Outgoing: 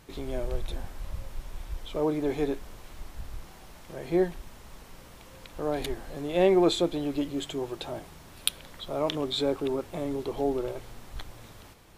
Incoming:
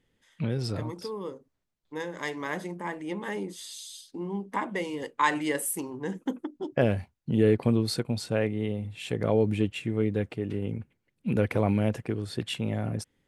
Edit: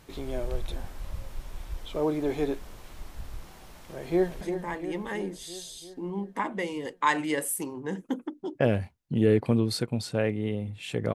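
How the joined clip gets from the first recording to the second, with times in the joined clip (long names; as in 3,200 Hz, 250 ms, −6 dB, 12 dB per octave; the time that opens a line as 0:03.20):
outgoing
0:03.90–0:04.41: delay throw 340 ms, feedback 65%, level −9 dB
0:04.41: continue with incoming from 0:02.58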